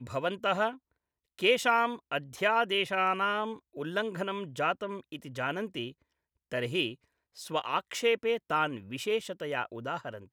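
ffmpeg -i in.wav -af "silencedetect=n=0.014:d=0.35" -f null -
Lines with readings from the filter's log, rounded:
silence_start: 0.72
silence_end: 1.39 | silence_duration: 0.67
silence_start: 5.89
silence_end: 6.52 | silence_duration: 0.63
silence_start: 6.92
silence_end: 7.39 | silence_duration: 0.47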